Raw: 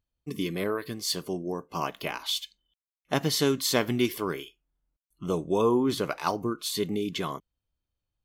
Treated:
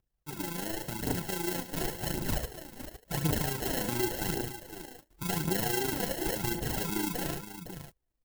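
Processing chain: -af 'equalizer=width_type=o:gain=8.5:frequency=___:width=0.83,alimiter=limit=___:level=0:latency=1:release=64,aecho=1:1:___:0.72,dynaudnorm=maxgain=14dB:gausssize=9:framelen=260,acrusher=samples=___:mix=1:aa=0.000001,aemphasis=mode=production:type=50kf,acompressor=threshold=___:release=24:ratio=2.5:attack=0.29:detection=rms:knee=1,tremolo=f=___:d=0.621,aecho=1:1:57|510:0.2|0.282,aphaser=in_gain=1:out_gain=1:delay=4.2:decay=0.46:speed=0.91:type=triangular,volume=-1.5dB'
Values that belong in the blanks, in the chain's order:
83, -15.5dB, 5.8, 37, -26dB, 27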